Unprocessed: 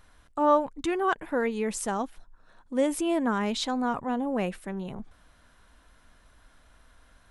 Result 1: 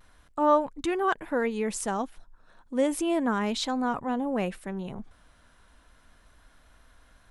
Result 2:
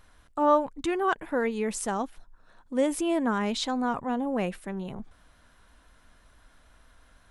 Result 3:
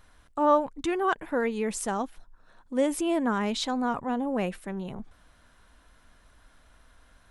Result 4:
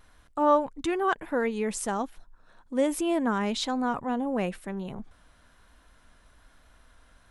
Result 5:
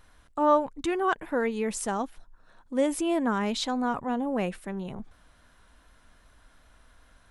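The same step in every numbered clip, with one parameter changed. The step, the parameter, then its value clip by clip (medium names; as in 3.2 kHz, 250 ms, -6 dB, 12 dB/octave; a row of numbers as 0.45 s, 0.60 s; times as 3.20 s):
vibrato, rate: 0.33 Hz, 6 Hz, 15 Hz, 1.1 Hz, 2.6 Hz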